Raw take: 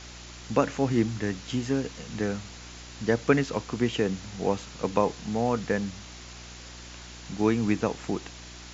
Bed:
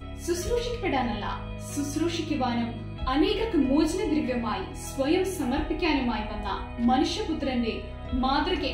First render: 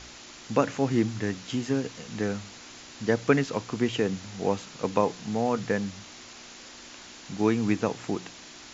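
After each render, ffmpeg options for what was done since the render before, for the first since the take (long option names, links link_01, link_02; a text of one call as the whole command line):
ffmpeg -i in.wav -af "bandreject=frequency=60:width_type=h:width=4,bandreject=frequency=120:width_type=h:width=4,bandreject=frequency=180:width_type=h:width=4" out.wav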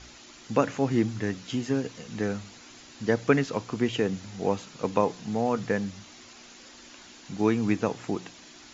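ffmpeg -i in.wav -af "afftdn=noise_reduction=6:noise_floor=-47" out.wav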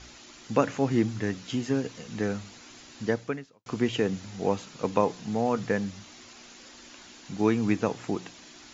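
ffmpeg -i in.wav -filter_complex "[0:a]asplit=2[link_01][link_02];[link_01]atrim=end=3.66,asetpts=PTS-STARTPTS,afade=type=out:start_time=3.03:duration=0.63:curve=qua[link_03];[link_02]atrim=start=3.66,asetpts=PTS-STARTPTS,afade=type=in:duration=0.004:curve=hsin[link_04];[link_03][link_04]concat=n=2:v=0:a=1" out.wav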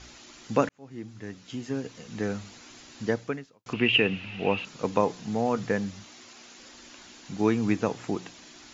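ffmpeg -i in.wav -filter_complex "[0:a]asettb=1/sr,asplit=3[link_01][link_02][link_03];[link_01]atrim=end=3.734[link_04];[link_02]atrim=start=3.73:end=4.65,asetpts=PTS-STARTPTS,afade=type=in:duration=0.004:curve=qsin,afade=type=out:start_time=0.916:duration=0.004:curve=qsin,lowpass=frequency=2700:width_type=q:width=13[link_05];[link_03]atrim=start=4.646[link_06];[link_04][link_05]acrossfade=duration=0.004:curve1=hsin:curve2=qsin[link_07];[link_07][link_06]acrossfade=duration=0.004:curve1=qsin:curve2=hsin,asettb=1/sr,asplit=3[link_08][link_09][link_10];[link_08]atrim=end=6.074[link_11];[link_09]atrim=start=6.07:end=6.58,asetpts=PTS-STARTPTS,afade=type=in:duration=0.004:curve=qsin,afade=type=out:start_time=0.506:duration=0.004:curve=qsin,lowshelf=frequency=96:gain=-11.5[link_12];[link_10]atrim=start=6.576[link_13];[link_11][link_12]acrossfade=duration=0.004:curve1=hsin:curve2=qsin[link_14];[link_14][link_13]acrossfade=duration=0.004:curve1=qsin:curve2=hsin,asplit=2[link_15][link_16];[link_15]atrim=end=0.69,asetpts=PTS-STARTPTS,afade=type=out:start_time=0.686:duration=0.004:curve=hsin[link_17];[link_16]atrim=start=0.69,asetpts=PTS-STARTPTS,afade=type=in:duration=1.77[link_18];[link_17][link_18]concat=n=2:v=0:a=1" out.wav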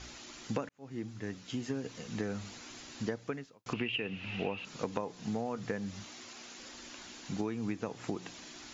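ffmpeg -i in.wav -af "acompressor=threshold=-31dB:ratio=16" out.wav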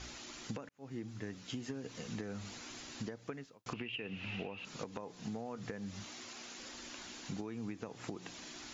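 ffmpeg -i in.wav -af "alimiter=limit=-23.5dB:level=0:latency=1:release=375,acompressor=threshold=-38dB:ratio=6" out.wav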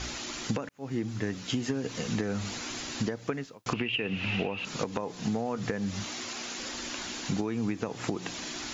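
ffmpeg -i in.wav -af "volume=11.5dB" out.wav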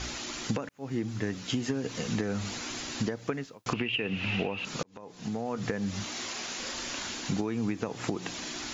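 ffmpeg -i in.wav -filter_complex "[0:a]asettb=1/sr,asplit=3[link_01][link_02][link_03];[link_01]atrim=end=6.124[link_04];[link_02]atrim=start=6.12:end=7.14,asetpts=PTS-STARTPTS,afade=type=in:duration=0.004:curve=qsin,afade=type=out:start_time=1.016:duration=0.004:curve=qsin,asplit=2[link_05][link_06];[link_06]adelay=35,volume=-5dB[link_07];[link_05][link_07]amix=inputs=2:normalize=0,atrim=end_sample=44982[link_08];[link_03]atrim=start=7.136[link_09];[link_04][link_08]acrossfade=duration=0.004:curve1=hsin:curve2=qsin[link_10];[link_10][link_09]acrossfade=duration=0.004:curve1=qsin:curve2=hsin,asplit=2[link_11][link_12];[link_11]atrim=end=4.83,asetpts=PTS-STARTPTS,afade=type=out:start_time=4.826:duration=0.004:curve=hsin[link_13];[link_12]atrim=start=4.83,asetpts=PTS-STARTPTS,afade=type=in:duration=0.77[link_14];[link_13][link_14]concat=n=2:v=0:a=1" out.wav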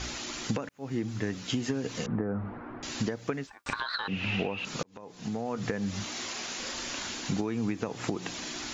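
ffmpeg -i in.wav -filter_complex "[0:a]asettb=1/sr,asplit=3[link_01][link_02][link_03];[link_01]atrim=end=2.064[link_04];[link_02]atrim=start=2.06:end=2.83,asetpts=PTS-STARTPTS,afade=type=in:duration=0.004:curve=qsin,afade=type=out:start_time=0.766:duration=0.004:curve=qsin,lowpass=frequency=1400:width=0.5412,lowpass=frequency=1400:width=1.3066[link_05];[link_03]atrim=start=2.826[link_06];[link_04][link_05]acrossfade=duration=0.004:curve1=hsin:curve2=qsin[link_07];[link_07][link_06]acrossfade=duration=0.004:curve1=qsin:curve2=hsin,asettb=1/sr,asplit=3[link_08][link_09][link_10];[link_08]atrim=end=3.474[link_11];[link_09]atrim=start=3.47:end=4.08,asetpts=PTS-STARTPTS,afade=type=in:duration=0.004:curve=qsin,afade=type=out:start_time=0.606:duration=0.004:curve=qsin,aeval=exprs='val(0)*sin(2*PI*1300*n/s)':channel_layout=same[link_12];[link_10]atrim=start=4.076[link_13];[link_11][link_12]acrossfade=duration=0.004:curve1=hsin:curve2=qsin[link_14];[link_14][link_13]acrossfade=duration=0.004:curve1=qsin:curve2=hsin" out.wav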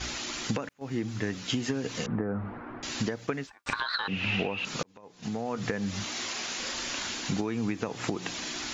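ffmpeg -i in.wav -af "agate=range=-7dB:threshold=-43dB:ratio=16:detection=peak,equalizer=frequency=2700:width_type=o:width=3:gain=3" out.wav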